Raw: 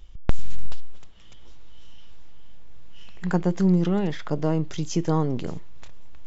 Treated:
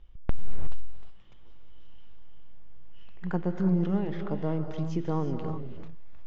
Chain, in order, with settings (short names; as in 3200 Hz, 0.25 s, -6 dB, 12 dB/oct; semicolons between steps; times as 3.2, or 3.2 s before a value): Bessel low-pass 2300 Hz, order 2; non-linear reverb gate 0.39 s rising, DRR 6.5 dB; gain -6.5 dB